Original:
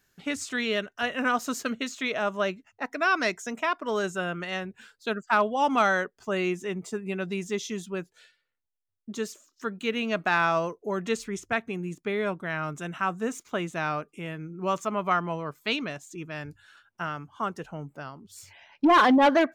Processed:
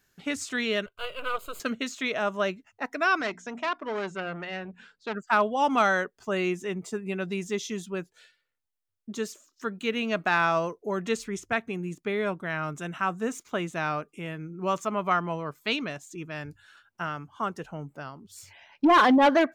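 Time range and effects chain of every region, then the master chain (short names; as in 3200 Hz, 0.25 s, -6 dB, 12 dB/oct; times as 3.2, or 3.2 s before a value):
0.86–1.6 half-wave gain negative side -12 dB + fixed phaser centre 1200 Hz, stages 8
3.21–5.15 air absorption 120 m + notches 60/120/180/240/300 Hz + core saturation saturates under 1900 Hz
whole clip: dry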